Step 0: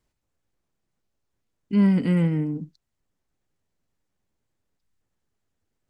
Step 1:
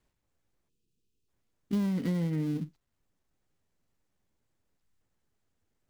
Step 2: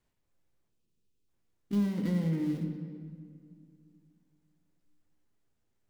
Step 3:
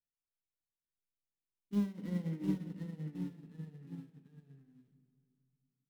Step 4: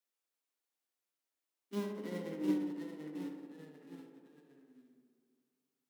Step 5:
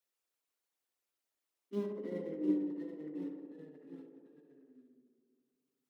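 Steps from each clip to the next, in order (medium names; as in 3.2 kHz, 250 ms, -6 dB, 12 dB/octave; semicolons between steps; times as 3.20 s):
dead-time distortion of 0.17 ms; spectral selection erased 0.69–1.28 s, 500–2400 Hz; compression 16:1, threshold -26 dBFS, peak gain reduction 12 dB
reverberation RT60 2.2 s, pre-delay 6 ms, DRR 3.5 dB; trim -3 dB
ever faster or slower copies 605 ms, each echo -1 st, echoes 3; band-stop 4.6 kHz, Q 22; upward expansion 2.5:1, over -40 dBFS; trim -2.5 dB
high-pass 280 Hz 24 dB/octave; tape echo 66 ms, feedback 85%, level -5 dB, low-pass 1.6 kHz; trim +4.5 dB
resonances exaggerated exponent 1.5; trim +1 dB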